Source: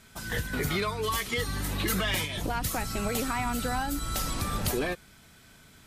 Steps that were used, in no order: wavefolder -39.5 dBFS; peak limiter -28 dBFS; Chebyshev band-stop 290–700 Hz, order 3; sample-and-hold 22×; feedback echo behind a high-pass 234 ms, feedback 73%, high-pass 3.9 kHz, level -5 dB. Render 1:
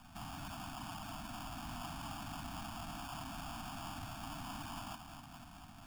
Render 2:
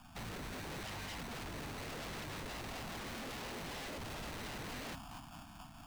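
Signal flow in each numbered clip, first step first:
peak limiter > wavefolder > feedback echo behind a high-pass > sample-and-hold > Chebyshev band-stop; peak limiter > feedback echo behind a high-pass > sample-and-hold > Chebyshev band-stop > wavefolder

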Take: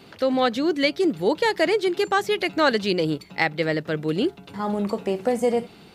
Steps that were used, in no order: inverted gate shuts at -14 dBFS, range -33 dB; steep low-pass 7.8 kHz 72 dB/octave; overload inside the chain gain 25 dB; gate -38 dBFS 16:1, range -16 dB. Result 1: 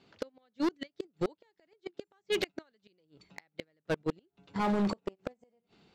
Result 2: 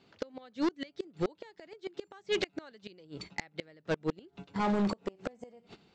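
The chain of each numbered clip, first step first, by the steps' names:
inverted gate > steep low-pass > overload inside the chain > gate; gate > inverted gate > overload inside the chain > steep low-pass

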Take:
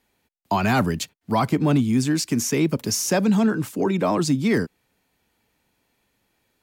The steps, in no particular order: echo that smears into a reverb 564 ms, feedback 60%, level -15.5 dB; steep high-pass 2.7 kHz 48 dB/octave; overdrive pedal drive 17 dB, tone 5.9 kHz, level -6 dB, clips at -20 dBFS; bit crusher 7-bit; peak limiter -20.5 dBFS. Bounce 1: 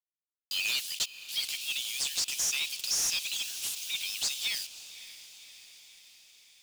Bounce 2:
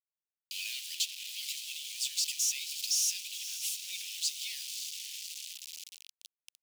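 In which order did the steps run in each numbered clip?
bit crusher > steep high-pass > peak limiter > overdrive pedal > echo that smears into a reverb; peak limiter > echo that smears into a reverb > bit crusher > overdrive pedal > steep high-pass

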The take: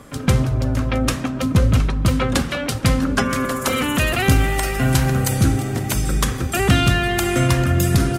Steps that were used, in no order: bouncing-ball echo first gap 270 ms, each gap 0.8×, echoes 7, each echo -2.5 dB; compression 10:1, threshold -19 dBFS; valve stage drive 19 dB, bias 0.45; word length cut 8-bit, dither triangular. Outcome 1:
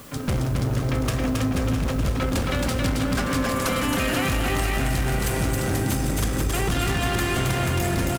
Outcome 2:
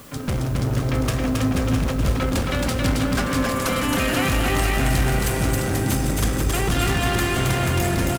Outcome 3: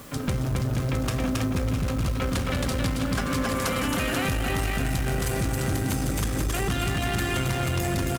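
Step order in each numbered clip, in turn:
valve stage > bouncing-ball echo > word length cut > compression; valve stage > compression > bouncing-ball echo > word length cut; bouncing-ball echo > compression > word length cut > valve stage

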